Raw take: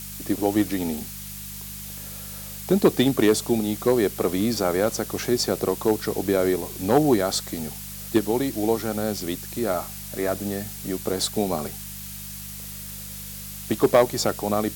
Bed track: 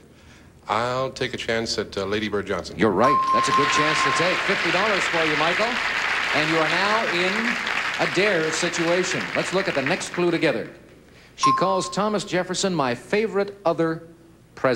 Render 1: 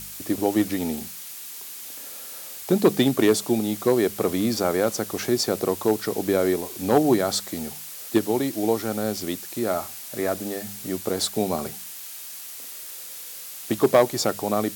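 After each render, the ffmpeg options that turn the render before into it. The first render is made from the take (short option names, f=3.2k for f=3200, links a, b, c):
-af "bandreject=f=50:t=h:w=4,bandreject=f=100:t=h:w=4,bandreject=f=150:t=h:w=4,bandreject=f=200:t=h:w=4"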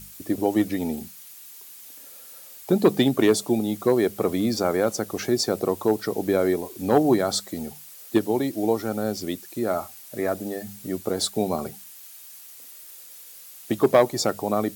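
-af "afftdn=nr=9:nf=-38"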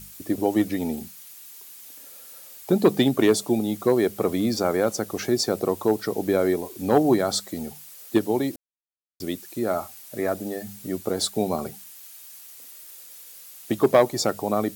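-filter_complex "[0:a]asplit=3[a][b][c];[a]atrim=end=8.56,asetpts=PTS-STARTPTS,afade=t=out:st=8.556:d=0.004:c=hsin[d];[b]atrim=start=8.56:end=9.2,asetpts=PTS-STARTPTS,volume=0[e];[c]atrim=start=9.2,asetpts=PTS-STARTPTS,afade=t=in:d=0.004:c=hsin[f];[d][e][f]concat=n=3:v=0:a=1"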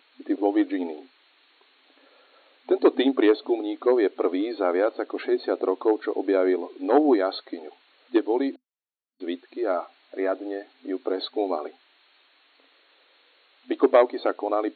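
-af "afftfilt=real='re*between(b*sr/4096,250,4400)':imag='im*between(b*sr/4096,250,4400)':win_size=4096:overlap=0.75,aemphasis=mode=reproduction:type=50fm"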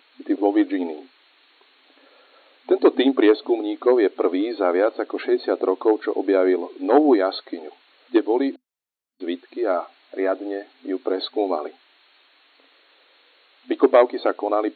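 -af "volume=3.5dB,alimiter=limit=-3dB:level=0:latency=1"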